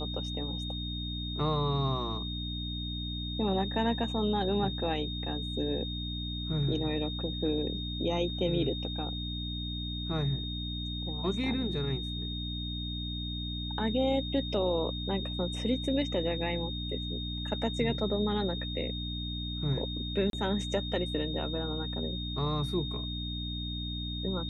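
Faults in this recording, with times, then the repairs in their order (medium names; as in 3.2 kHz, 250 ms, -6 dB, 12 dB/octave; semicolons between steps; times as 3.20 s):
hum 60 Hz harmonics 5 -37 dBFS
whine 3.7 kHz -38 dBFS
20.30–20.33 s: dropout 32 ms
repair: band-stop 3.7 kHz, Q 30; de-hum 60 Hz, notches 5; interpolate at 20.30 s, 32 ms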